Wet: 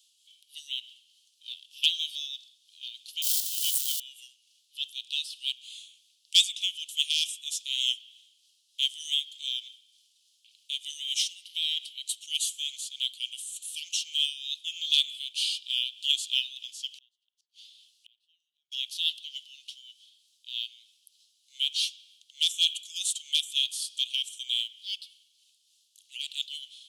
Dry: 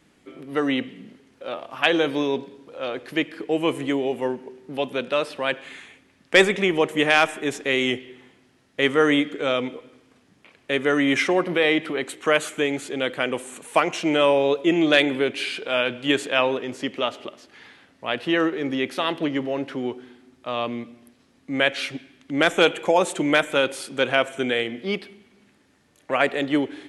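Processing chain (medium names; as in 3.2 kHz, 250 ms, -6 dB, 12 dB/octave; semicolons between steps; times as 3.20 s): 3.22–4.00 s: zero-crossing glitches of -18.5 dBFS; steep high-pass 3 kHz 72 dB/octave; short-mantissa float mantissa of 4-bit; 16.95–18.72 s: inverted gate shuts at -42 dBFS, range -37 dB; tremolo 3.3 Hz, depth 35%; trim +5.5 dB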